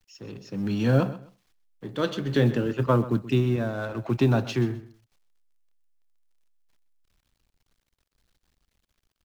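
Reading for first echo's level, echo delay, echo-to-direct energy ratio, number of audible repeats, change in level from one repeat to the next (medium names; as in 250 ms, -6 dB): -16.0 dB, 129 ms, -16.0 dB, 2, -13.0 dB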